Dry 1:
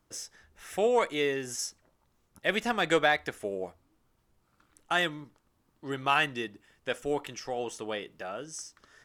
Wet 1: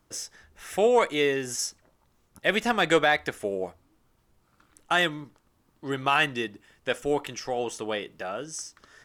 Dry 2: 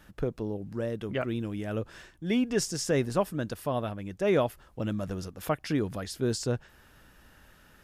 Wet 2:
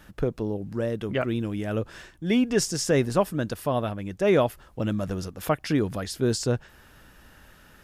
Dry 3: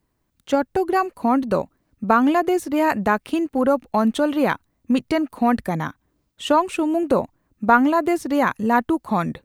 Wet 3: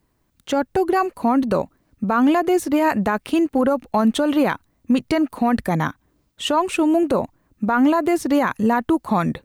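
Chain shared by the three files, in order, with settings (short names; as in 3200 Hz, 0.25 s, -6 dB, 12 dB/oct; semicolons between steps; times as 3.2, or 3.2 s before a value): limiter -14.5 dBFS; gain +4.5 dB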